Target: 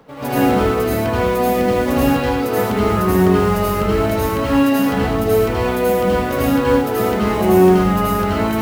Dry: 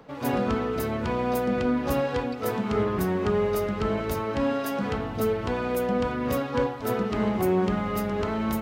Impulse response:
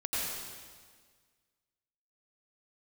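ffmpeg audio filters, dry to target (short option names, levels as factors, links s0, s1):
-filter_complex "[0:a]acrusher=bits=6:mode=log:mix=0:aa=0.000001[s0];[1:a]atrim=start_sample=2205,afade=t=out:st=0.31:d=0.01,atrim=end_sample=14112,asetrate=48510,aresample=44100[s1];[s0][s1]afir=irnorm=-1:irlink=0,volume=1.88"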